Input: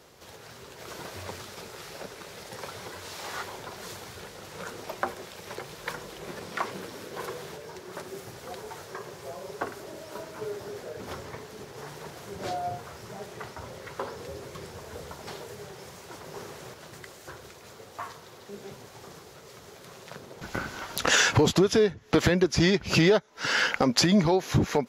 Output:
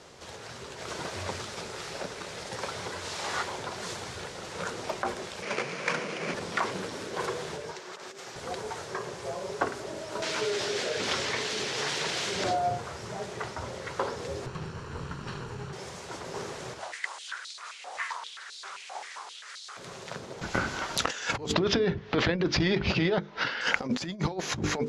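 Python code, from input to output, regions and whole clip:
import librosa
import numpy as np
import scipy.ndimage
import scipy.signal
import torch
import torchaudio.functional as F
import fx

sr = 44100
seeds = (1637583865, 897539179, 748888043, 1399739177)

y = fx.chain(x, sr, fx.halfwave_hold(),
    fx.cabinet(low_hz=160.0, low_slope=24, high_hz=8900.0, hz=(360.0, 840.0, 2300.0, 3700.0, 7900.0), db=(-5, -6, 8, -6, -9)), at=(5.42, 6.34))
y = fx.chain(y, sr, fx.over_compress(threshold_db=-41.0, ratio=-0.5),
    fx.highpass(hz=830.0, slope=6),
    fx.peak_eq(hz=10000.0, db=-11.5, octaves=0.3), at=(7.72, 8.36))
y = fx.chain(y, sr, fx.weighting(curve='D'),
    fx.env_flatten(amount_pct=50), at=(10.22, 12.44))
y = fx.chain(y, sr, fx.lower_of_two(delay_ms=0.71),
    fx.lowpass(hz=2700.0, slope=6),
    fx.peak_eq(hz=140.0, db=8.0, octaves=0.66), at=(14.46, 15.73))
y = fx.chain(y, sr, fx.resample_bad(factor=2, down='none', up='filtered'),
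    fx.filter_held_highpass(hz=7.6, low_hz=740.0, high_hz=4100.0), at=(16.79, 19.77))
y = fx.chain(y, sr, fx.lowpass(hz=4300.0, slope=24),
    fx.over_compress(threshold_db=-26.0, ratio=-1.0), at=(21.54, 23.61))
y = scipy.signal.sosfilt(scipy.signal.butter(4, 9200.0, 'lowpass', fs=sr, output='sos'), y)
y = fx.hum_notches(y, sr, base_hz=50, count=10)
y = fx.over_compress(y, sr, threshold_db=-28.0, ratio=-0.5)
y = F.gain(torch.from_numpy(y), 2.0).numpy()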